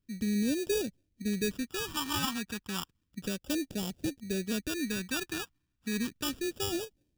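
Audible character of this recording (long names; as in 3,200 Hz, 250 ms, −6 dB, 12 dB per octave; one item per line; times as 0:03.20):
aliases and images of a low sample rate 2,100 Hz, jitter 0%
phaser sweep stages 2, 0.32 Hz, lowest notch 530–1,100 Hz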